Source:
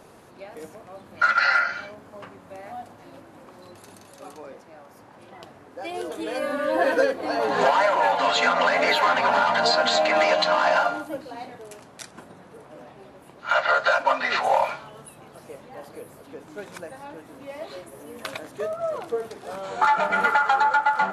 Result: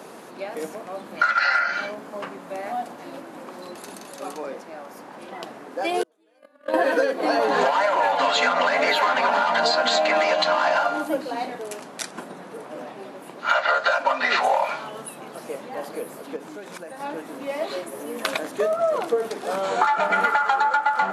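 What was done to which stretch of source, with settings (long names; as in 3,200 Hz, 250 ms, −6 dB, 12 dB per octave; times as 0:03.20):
0:06.03–0:06.74: noise gate −22 dBFS, range −41 dB
0:16.36–0:17.00: downward compressor 4 to 1, threshold −43 dBFS
whole clip: high-pass filter 180 Hz 24 dB per octave; downward compressor 6 to 1, threshold −26 dBFS; level +8.5 dB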